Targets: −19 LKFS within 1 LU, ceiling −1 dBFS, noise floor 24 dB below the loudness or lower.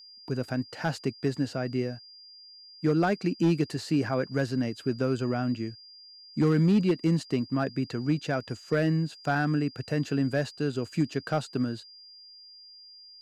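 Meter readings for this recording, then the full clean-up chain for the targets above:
share of clipped samples 0.4%; peaks flattened at −17.0 dBFS; interfering tone 4,800 Hz; level of the tone −48 dBFS; integrated loudness −28.5 LKFS; sample peak −17.0 dBFS; target loudness −19.0 LKFS
→ clipped peaks rebuilt −17 dBFS
notch filter 4,800 Hz, Q 30
level +9.5 dB

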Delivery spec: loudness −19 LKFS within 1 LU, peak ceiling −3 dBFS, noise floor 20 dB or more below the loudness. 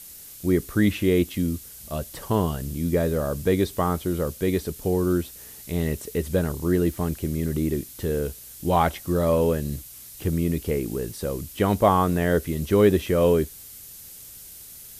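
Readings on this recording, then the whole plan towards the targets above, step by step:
background noise floor −43 dBFS; target noise floor −45 dBFS; integrated loudness −24.5 LKFS; sample peak −6.0 dBFS; target loudness −19.0 LKFS
→ noise reduction from a noise print 6 dB
level +5.5 dB
brickwall limiter −3 dBFS

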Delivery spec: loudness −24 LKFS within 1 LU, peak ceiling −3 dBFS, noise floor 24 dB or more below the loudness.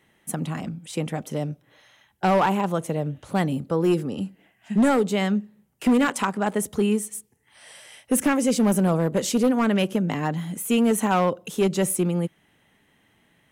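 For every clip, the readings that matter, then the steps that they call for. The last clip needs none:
share of clipped samples 1.6%; peaks flattened at −14.0 dBFS; integrated loudness −23.5 LKFS; sample peak −14.0 dBFS; target loudness −24.0 LKFS
→ clipped peaks rebuilt −14 dBFS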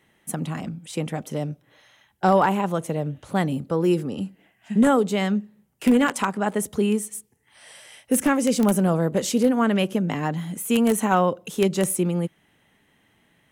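share of clipped samples 0.0%; integrated loudness −23.0 LKFS; sample peak −5.0 dBFS; target loudness −24.0 LKFS
→ level −1 dB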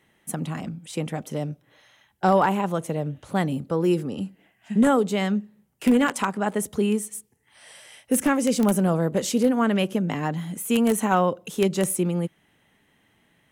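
integrated loudness −24.0 LKFS; sample peak −6.0 dBFS; background noise floor −65 dBFS

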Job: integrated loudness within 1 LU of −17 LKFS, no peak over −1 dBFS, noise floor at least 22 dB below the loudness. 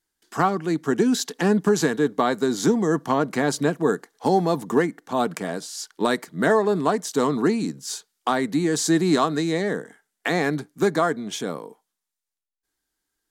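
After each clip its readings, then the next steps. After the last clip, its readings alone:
integrated loudness −23.0 LKFS; sample peak −8.0 dBFS; target loudness −17.0 LKFS
→ level +6 dB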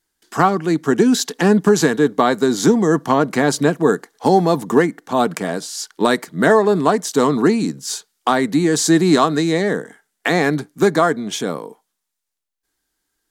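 integrated loudness −17.0 LKFS; sample peak −2.0 dBFS; background noise floor −78 dBFS

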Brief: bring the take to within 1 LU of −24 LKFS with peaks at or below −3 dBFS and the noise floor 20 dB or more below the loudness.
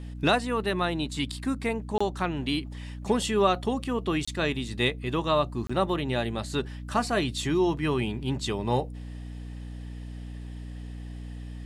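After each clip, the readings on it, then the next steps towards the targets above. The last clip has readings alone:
number of dropouts 3; longest dropout 25 ms; mains hum 60 Hz; hum harmonics up to 300 Hz; level of the hum −36 dBFS; integrated loudness −28.0 LKFS; sample peak −9.0 dBFS; target loudness −24.0 LKFS
→ repair the gap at 0:01.98/0:04.25/0:05.67, 25 ms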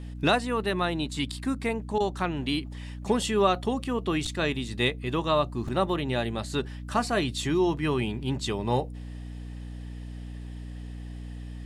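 number of dropouts 0; mains hum 60 Hz; hum harmonics up to 300 Hz; level of the hum −36 dBFS
→ hum removal 60 Hz, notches 5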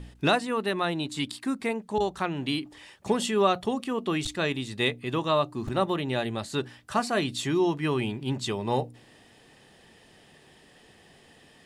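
mains hum none found; integrated loudness −28.0 LKFS; sample peak −9.0 dBFS; target loudness −24.0 LKFS
→ level +4 dB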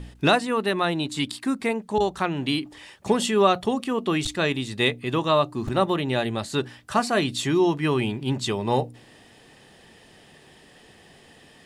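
integrated loudness −24.0 LKFS; sample peak −5.0 dBFS; background noise floor −52 dBFS

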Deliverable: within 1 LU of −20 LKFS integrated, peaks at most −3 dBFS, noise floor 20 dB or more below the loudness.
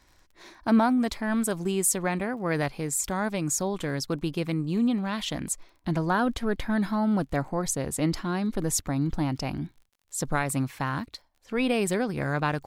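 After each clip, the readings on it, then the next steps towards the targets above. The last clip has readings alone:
crackle rate 29 per second; integrated loudness −27.5 LKFS; sample peak −13.0 dBFS; target loudness −20.0 LKFS
→ click removal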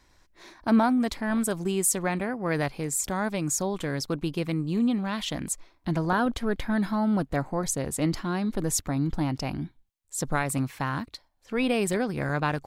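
crackle rate 0 per second; integrated loudness −27.5 LKFS; sample peak −13.0 dBFS; target loudness −20.0 LKFS
→ level +7.5 dB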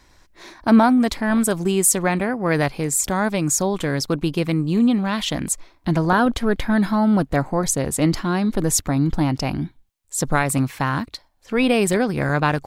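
integrated loudness −20.0 LKFS; sample peak −5.5 dBFS; background noise floor −56 dBFS

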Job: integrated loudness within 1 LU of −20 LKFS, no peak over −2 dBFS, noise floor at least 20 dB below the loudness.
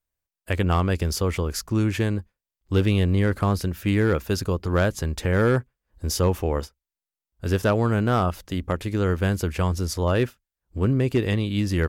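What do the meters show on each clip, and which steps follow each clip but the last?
share of clipped samples 0.4%; peaks flattened at −13.0 dBFS; integrated loudness −24.0 LKFS; sample peak −13.0 dBFS; target loudness −20.0 LKFS
→ clipped peaks rebuilt −13 dBFS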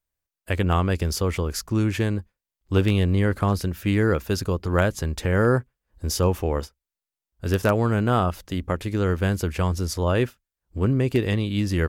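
share of clipped samples 0.0%; integrated loudness −24.0 LKFS; sample peak −4.5 dBFS; target loudness −20.0 LKFS
→ level +4 dB
brickwall limiter −2 dBFS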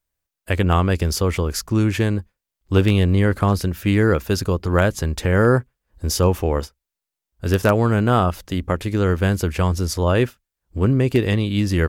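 integrated loudness −20.0 LKFS; sample peak −2.0 dBFS; background noise floor −85 dBFS

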